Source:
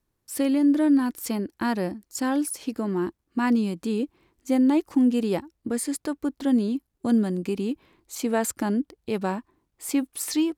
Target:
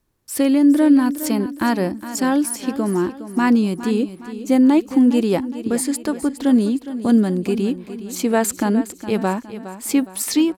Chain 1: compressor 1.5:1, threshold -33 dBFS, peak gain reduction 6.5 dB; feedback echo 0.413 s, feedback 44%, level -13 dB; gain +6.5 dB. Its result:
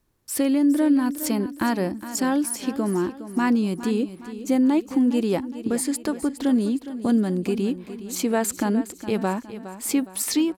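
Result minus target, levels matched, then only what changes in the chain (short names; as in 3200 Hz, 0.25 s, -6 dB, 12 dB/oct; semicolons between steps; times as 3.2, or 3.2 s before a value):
compressor: peak gain reduction +6.5 dB
remove: compressor 1.5:1, threshold -33 dBFS, peak gain reduction 6.5 dB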